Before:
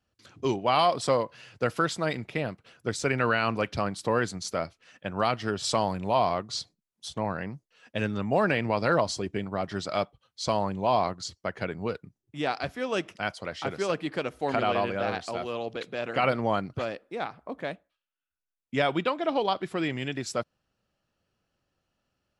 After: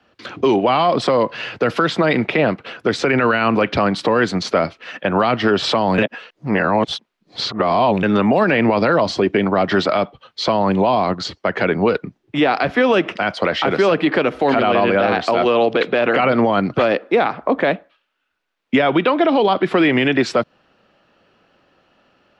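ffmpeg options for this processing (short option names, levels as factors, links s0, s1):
-filter_complex "[0:a]asplit=3[s0][s1][s2];[s0]atrim=end=5.982[s3];[s1]atrim=start=5.978:end=8.032,asetpts=PTS-STARTPTS,areverse[s4];[s2]atrim=start=8.028[s5];[s3][s4]acrossfade=d=0.004:c1=hsin:c2=hsin[s6];[s6][s5]acrossfade=d=0.004:c1=hsin:c2=hsin,acrossover=split=200 4000:gain=0.178 1 0.0708[s7][s8][s9];[s7][s8][s9]amix=inputs=3:normalize=0,acrossover=split=270|3300[s10][s11][s12];[s10]acompressor=threshold=0.01:ratio=4[s13];[s11]acompressor=threshold=0.0224:ratio=4[s14];[s12]acompressor=threshold=0.00224:ratio=4[s15];[s13][s14][s15]amix=inputs=3:normalize=0,alimiter=level_in=28.2:limit=0.891:release=50:level=0:latency=1,volume=0.531"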